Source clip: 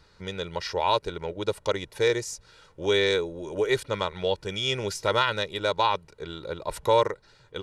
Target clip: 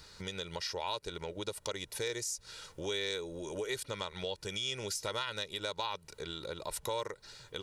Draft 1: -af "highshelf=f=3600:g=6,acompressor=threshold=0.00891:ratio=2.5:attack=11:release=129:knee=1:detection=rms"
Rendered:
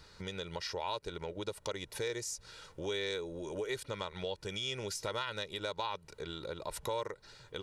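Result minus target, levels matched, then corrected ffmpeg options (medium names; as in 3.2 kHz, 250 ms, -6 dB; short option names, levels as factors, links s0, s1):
8 kHz band -2.5 dB
-af "highshelf=f=3600:g=14.5,acompressor=threshold=0.00891:ratio=2.5:attack=11:release=129:knee=1:detection=rms"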